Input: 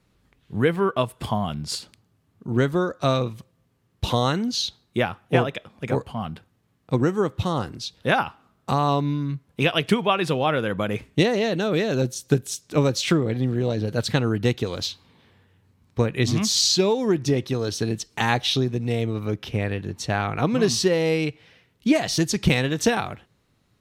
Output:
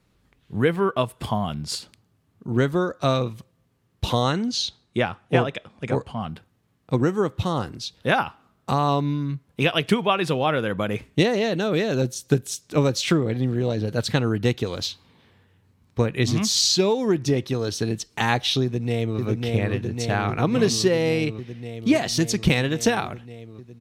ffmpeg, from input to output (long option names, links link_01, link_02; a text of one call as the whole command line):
ffmpeg -i in.wav -filter_complex "[0:a]asettb=1/sr,asplit=3[link_01][link_02][link_03];[link_01]atrim=end=4.224[link_04];[link_02]atrim=start=4.22:end=6.28,asetpts=PTS-STARTPTS,afade=type=in:duration=0.004:curve=qsin,afade=type=out:start_time=2.056:duration=0.004:curve=qsin,lowpass=frequency=10000:width=0.5412,lowpass=frequency=10000:width=1.3066[link_05];[link_03]atrim=start=6.276[link_06];[link_04][link_05]acrossfade=duration=0.004:curve1=hsin:curve2=qsin[link_07];[link_07][link_06]acrossfade=duration=0.004:curve1=qsin:curve2=hsin,asplit=2[link_08][link_09];[link_09]afade=type=in:start_time=18.63:duration=0.01,afade=type=out:start_time=19.2:duration=0.01,aecho=0:1:550|1100|1650|2200|2750|3300|3850|4400|4950|5500|6050|6600:0.749894|0.599915|0.479932|0.383946|0.307157|0.245725|0.19658|0.157264|0.125811|0.100649|0.0805193|0.0644154[link_10];[link_08][link_10]amix=inputs=2:normalize=0" out.wav